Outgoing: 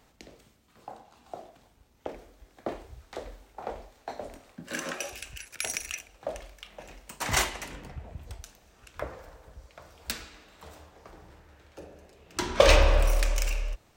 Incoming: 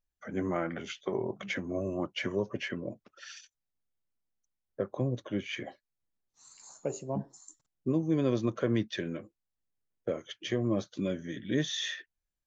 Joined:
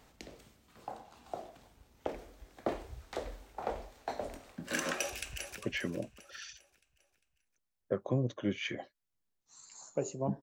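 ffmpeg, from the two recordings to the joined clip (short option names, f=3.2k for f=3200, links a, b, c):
-filter_complex "[0:a]apad=whole_dur=10.42,atrim=end=10.42,atrim=end=5.582[a];[1:a]atrim=start=2.458:end=7.3[b];[a][b]acrossfade=d=0.004:c1=hsin:c2=hsin,asplit=2[c][d];[d]afade=t=in:st=4.98:d=0.01,afade=t=out:st=5.58:d=0.01,aecho=0:1:400|800|1200|1600|2000:0.281838|0.126827|0.0570723|0.0256825|0.0115571[e];[c][e]amix=inputs=2:normalize=0"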